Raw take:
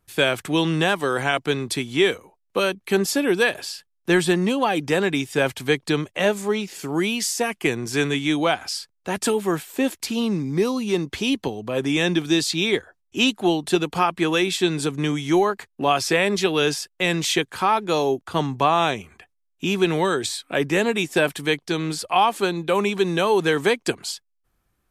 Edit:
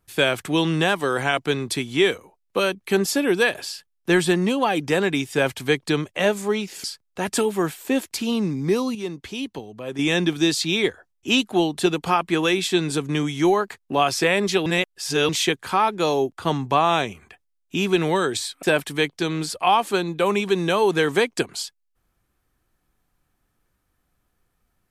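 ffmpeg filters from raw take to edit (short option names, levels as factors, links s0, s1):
-filter_complex "[0:a]asplit=7[s0][s1][s2][s3][s4][s5][s6];[s0]atrim=end=6.842[s7];[s1]atrim=start=8.728:end=10.842[s8];[s2]atrim=start=10.838:end=11.882,asetpts=PTS-STARTPTS,volume=0.422[s9];[s3]atrim=start=11.878:end=16.552[s10];[s4]atrim=start=16.548:end=17.182,asetpts=PTS-STARTPTS,areverse[s11];[s5]atrim=start=17.178:end=20.522[s12];[s6]atrim=start=21.118[s13];[s7][s8]acrossfade=d=0.004:c1=hsin:c2=hsin[s14];[s14][s9]acrossfade=d=0.004:c1=hsin:c2=hsin[s15];[s15][s10]acrossfade=d=0.004:c1=hsin:c2=hsin[s16];[s16][s11]acrossfade=d=0.004:c1=hsin:c2=hsin[s17];[s17][s12]acrossfade=d=0.004:c1=hsin:c2=hsin[s18];[s18][s13]acrossfade=d=0.004:c1=hsin:c2=hsin"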